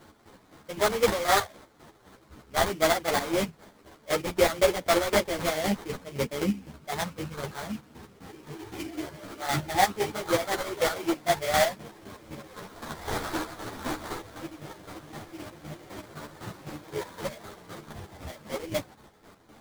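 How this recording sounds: chopped level 3.9 Hz, depth 60%, duty 40%; aliases and images of a low sample rate 2700 Hz, jitter 20%; a shimmering, thickened sound

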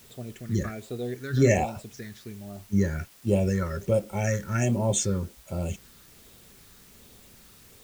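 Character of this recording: phasing stages 6, 1.3 Hz, lowest notch 690–1800 Hz; a quantiser's noise floor 10-bit, dither triangular

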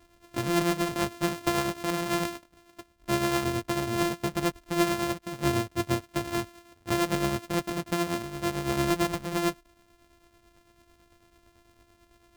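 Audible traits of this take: a buzz of ramps at a fixed pitch in blocks of 128 samples; tremolo triangle 9 Hz, depth 60%

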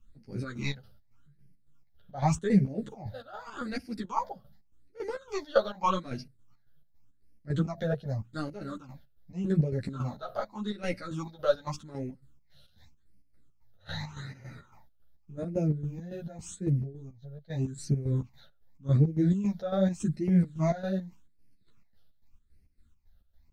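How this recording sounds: phasing stages 8, 0.85 Hz, lowest notch 290–1100 Hz; chopped level 3.6 Hz, depth 65%, duty 55%; a shimmering, thickened sound

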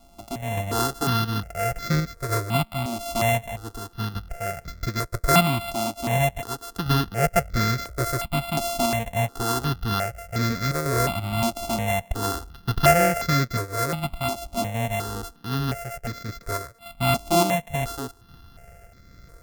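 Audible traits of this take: a buzz of ramps at a fixed pitch in blocks of 64 samples; random-step tremolo; notches that jump at a steady rate 2.8 Hz 470–2900 Hz

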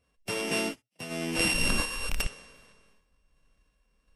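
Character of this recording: a buzz of ramps at a fixed pitch in blocks of 16 samples; random-step tremolo 2.7 Hz; Vorbis

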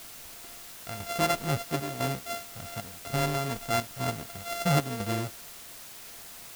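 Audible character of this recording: a buzz of ramps at a fixed pitch in blocks of 64 samples; chopped level 1 Hz, depth 60%, duty 80%; a quantiser's noise floor 8-bit, dither triangular

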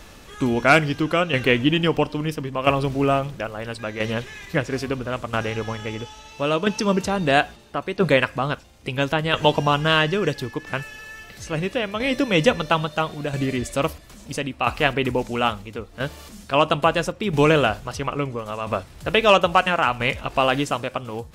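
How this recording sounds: tremolo saw down 0.75 Hz, depth 60%

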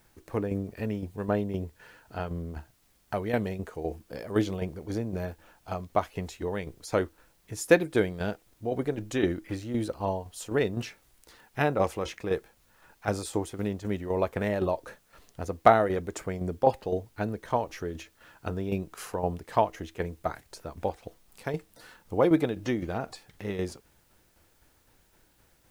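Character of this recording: tremolo saw down 3.9 Hz, depth 60%; a quantiser's noise floor 12-bit, dither triangular

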